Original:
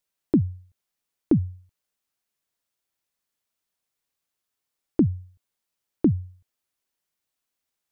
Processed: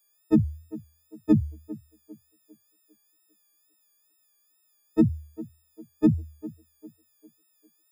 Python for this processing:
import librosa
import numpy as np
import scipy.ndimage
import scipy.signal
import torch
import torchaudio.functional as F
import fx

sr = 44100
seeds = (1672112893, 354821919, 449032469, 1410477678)

y = fx.freq_snap(x, sr, grid_st=6)
y = fx.wow_flutter(y, sr, seeds[0], rate_hz=2.1, depth_cents=76.0)
y = fx.echo_banded(y, sr, ms=400, feedback_pct=43, hz=440.0, wet_db=-16.0)